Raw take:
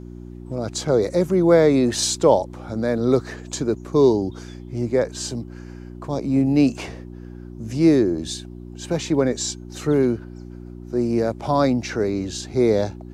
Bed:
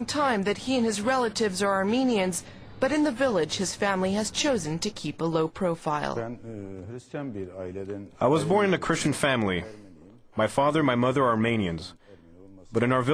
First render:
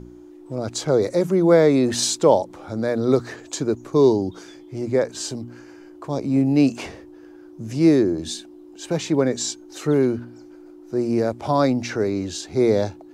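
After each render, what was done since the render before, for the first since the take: de-hum 60 Hz, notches 4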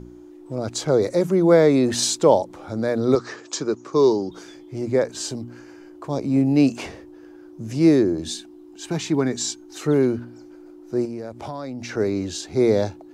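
3.15–4.31 speaker cabinet 190–7900 Hz, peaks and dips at 260 Hz -5 dB, 680 Hz -4 dB, 1200 Hz +6 dB, 5300 Hz +6 dB; 8.35–9.81 bell 530 Hz -13.5 dB 0.28 oct; 11.05–11.97 compressor 5:1, threshold -29 dBFS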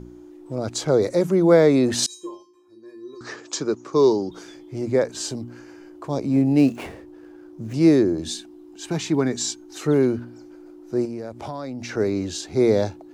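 2.06–3.21 resonator 350 Hz, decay 0.38 s, harmonics odd, mix 100%; 6.32–7.74 median filter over 9 samples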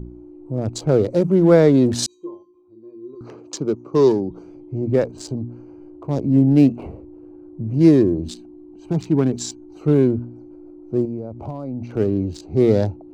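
Wiener smoothing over 25 samples; low shelf 200 Hz +10.5 dB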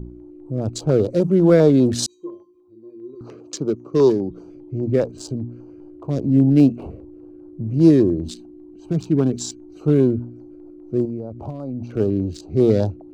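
LFO notch square 5 Hz 880–2000 Hz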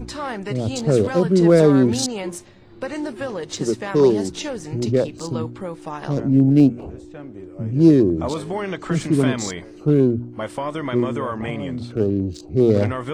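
add bed -4 dB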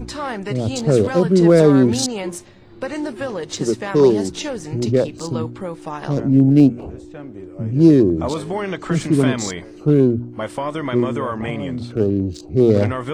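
gain +2 dB; limiter -2 dBFS, peak gain reduction 1.5 dB

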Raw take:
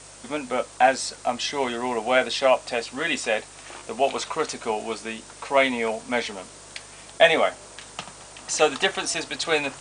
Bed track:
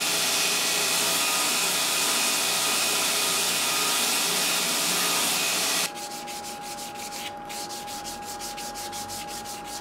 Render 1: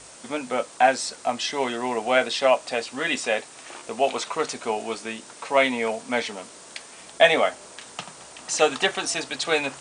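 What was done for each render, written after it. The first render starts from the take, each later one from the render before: de-hum 50 Hz, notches 3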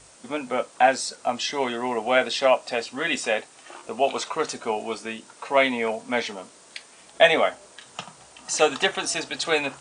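noise print and reduce 6 dB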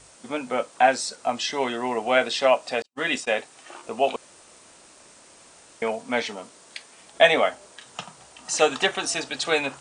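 2.82–3.38 gate -32 dBFS, range -49 dB; 4.16–5.82 room tone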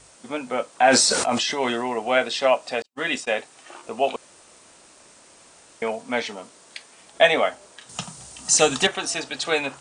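0.83–1.84 sustainer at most 28 dB/s; 7.89–8.87 tone controls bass +12 dB, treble +11 dB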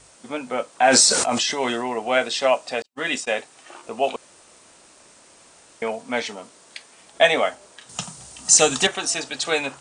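dynamic EQ 7300 Hz, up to +5 dB, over -40 dBFS, Q 1.1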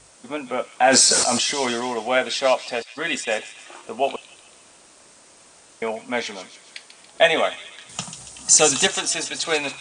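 thin delay 0.141 s, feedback 53%, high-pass 3000 Hz, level -7.5 dB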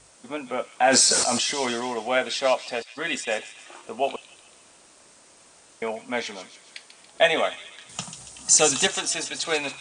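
gain -3 dB

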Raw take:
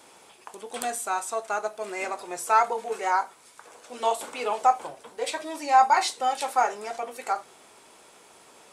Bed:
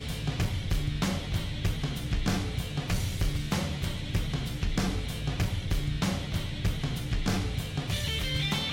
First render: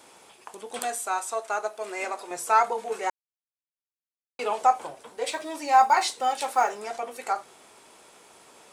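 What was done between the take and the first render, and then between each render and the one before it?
0.79–2.31 HPF 290 Hz; 3.1–4.39 mute; 5.27–6.79 block floating point 7-bit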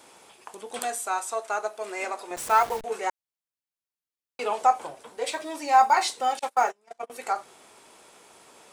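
2.36–2.84 level-crossing sampler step -33 dBFS; 6.39–7.1 gate -31 dBFS, range -30 dB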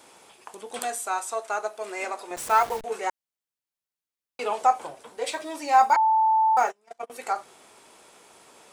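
5.96–6.57 bleep 881 Hz -17 dBFS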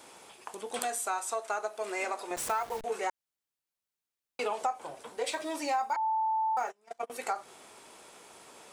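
compressor 5:1, threshold -29 dBFS, peak gain reduction 14.5 dB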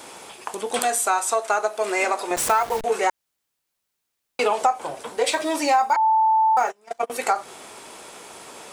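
gain +11.5 dB; limiter -3 dBFS, peak gain reduction 2.5 dB

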